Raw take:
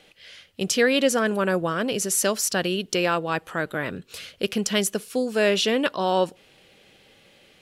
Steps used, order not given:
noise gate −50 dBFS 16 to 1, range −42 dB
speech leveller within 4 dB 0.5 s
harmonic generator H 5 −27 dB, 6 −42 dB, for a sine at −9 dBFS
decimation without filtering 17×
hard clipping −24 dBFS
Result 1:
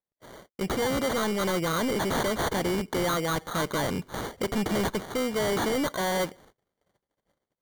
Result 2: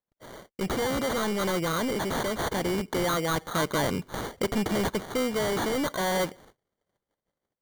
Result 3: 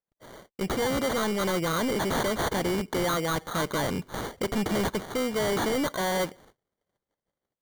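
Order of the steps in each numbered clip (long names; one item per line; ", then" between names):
decimation without filtering, then harmonic generator, then speech leveller, then noise gate, then hard clipping
noise gate, then harmonic generator, then hard clipping, then speech leveller, then decimation without filtering
noise gate, then harmonic generator, then decimation without filtering, then speech leveller, then hard clipping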